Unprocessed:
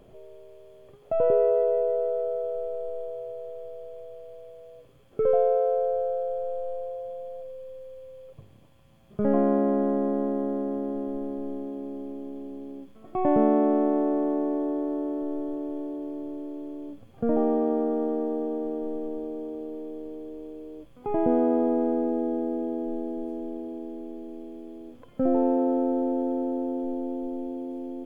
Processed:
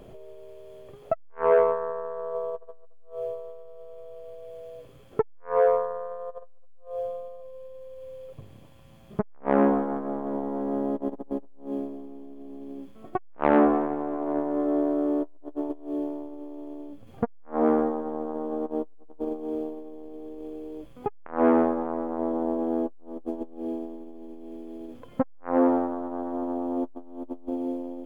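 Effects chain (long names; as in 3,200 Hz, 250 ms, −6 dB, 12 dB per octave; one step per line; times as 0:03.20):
saturating transformer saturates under 800 Hz
level +6 dB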